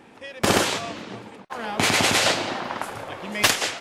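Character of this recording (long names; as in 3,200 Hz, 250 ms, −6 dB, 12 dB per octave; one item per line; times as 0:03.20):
background noise floor −49 dBFS
spectral slope −3.5 dB per octave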